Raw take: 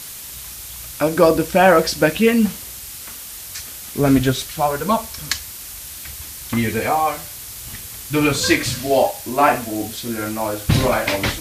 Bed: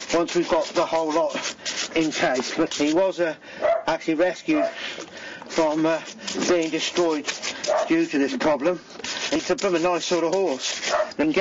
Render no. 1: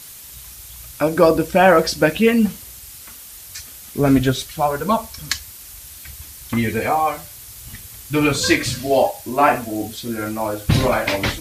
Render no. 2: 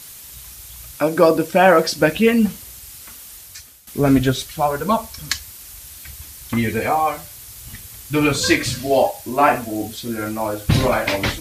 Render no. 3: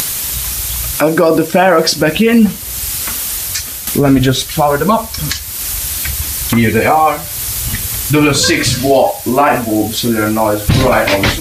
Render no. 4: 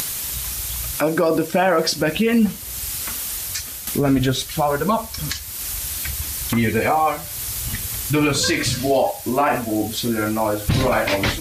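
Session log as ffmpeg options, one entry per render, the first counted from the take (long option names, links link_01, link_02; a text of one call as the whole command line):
ffmpeg -i in.wav -af "afftdn=noise_reduction=6:noise_floor=-34" out.wav
ffmpeg -i in.wav -filter_complex "[0:a]asettb=1/sr,asplit=3[link_01][link_02][link_03];[link_01]atrim=end=0.964[link_04];[link_02]atrim=start=0.96:end=1.99,asetpts=PTS-STARTPTS,afade=type=in:duration=0.004:curve=qsin,afade=type=out:start_time=1.026:duration=0.004:curve=qsin,highpass=140[link_05];[link_03]atrim=start=1.986[link_06];[link_04][link_05]acrossfade=duration=0.004:curve1=hsin:curve2=qsin[link_07];[link_07][link_06]acrossfade=duration=0.004:curve1=qsin:curve2=hsin,asplit=2[link_08][link_09];[link_08]atrim=end=3.87,asetpts=PTS-STARTPTS,afade=type=out:start_time=3.32:duration=0.55:silence=0.199526[link_10];[link_09]atrim=start=3.87,asetpts=PTS-STARTPTS,afade=type=in:duration=0.004:curve=hsin:silence=0.199526[link_11];[link_10][link_11]concat=n=2:v=0:a=1" out.wav
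ffmpeg -i in.wav -af "acompressor=mode=upward:threshold=-19dB:ratio=2.5,alimiter=level_in=10.5dB:limit=-1dB:release=50:level=0:latency=1" out.wav
ffmpeg -i in.wav -af "volume=-8dB" out.wav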